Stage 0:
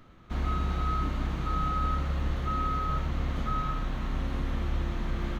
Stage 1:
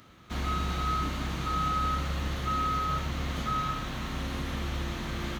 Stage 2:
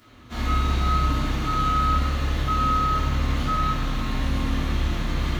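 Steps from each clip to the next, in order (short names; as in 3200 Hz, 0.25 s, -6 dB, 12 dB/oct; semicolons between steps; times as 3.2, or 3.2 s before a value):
HPF 64 Hz; high shelf 2700 Hz +12 dB
reverb RT60 0.85 s, pre-delay 3 ms, DRR -9 dB; gain -4.5 dB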